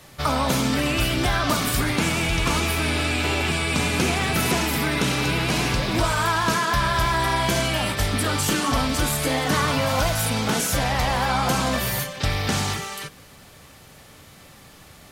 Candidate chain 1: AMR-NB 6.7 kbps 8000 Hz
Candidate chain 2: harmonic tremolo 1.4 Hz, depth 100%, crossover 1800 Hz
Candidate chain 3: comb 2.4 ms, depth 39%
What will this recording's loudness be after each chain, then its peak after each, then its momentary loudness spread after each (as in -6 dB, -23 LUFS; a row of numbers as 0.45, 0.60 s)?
-26.0, -27.0, -21.5 LUFS; -11.5, -12.0, -8.5 dBFS; 4, 4, 2 LU